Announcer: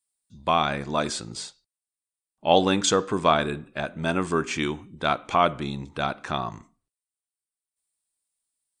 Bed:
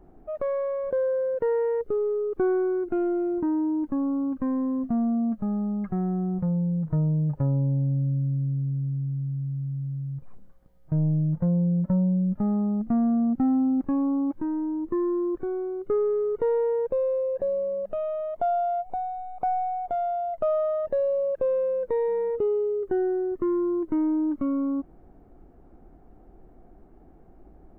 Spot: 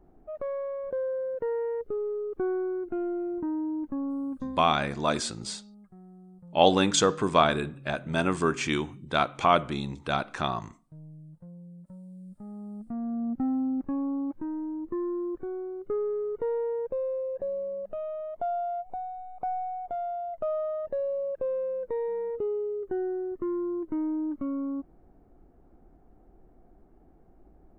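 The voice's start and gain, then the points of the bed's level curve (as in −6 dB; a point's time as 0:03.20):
4.10 s, −1.0 dB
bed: 0:04.39 −5.5 dB
0:04.86 −23.5 dB
0:12.03 −23.5 dB
0:13.39 −5.5 dB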